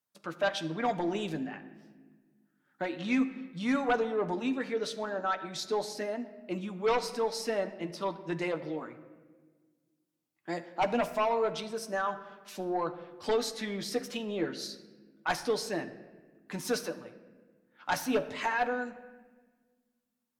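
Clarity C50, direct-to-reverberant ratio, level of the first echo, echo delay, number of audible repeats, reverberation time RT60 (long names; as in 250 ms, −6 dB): 13.0 dB, 6.0 dB, no echo audible, no echo audible, no echo audible, 1.4 s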